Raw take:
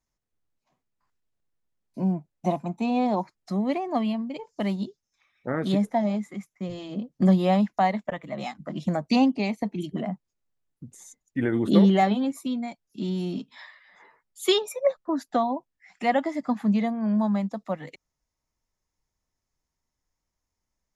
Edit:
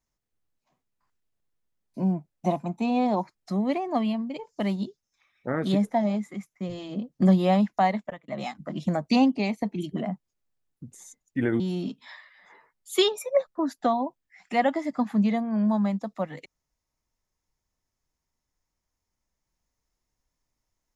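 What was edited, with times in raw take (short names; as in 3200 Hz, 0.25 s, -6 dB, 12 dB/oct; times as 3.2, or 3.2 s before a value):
7.96–8.28 fade out
11.6–13.1 cut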